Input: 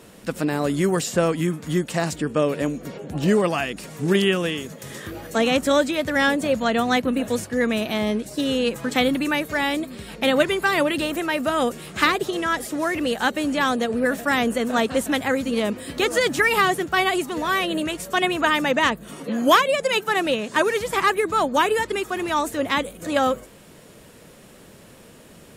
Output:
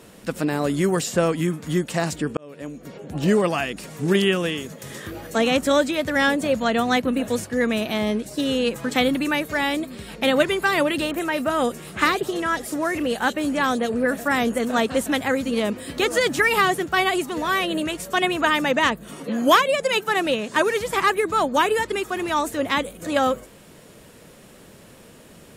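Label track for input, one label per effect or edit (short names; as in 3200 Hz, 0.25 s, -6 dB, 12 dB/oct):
2.370000	3.260000	fade in
11.110000	14.650000	bands offset in time lows, highs 30 ms, split 3300 Hz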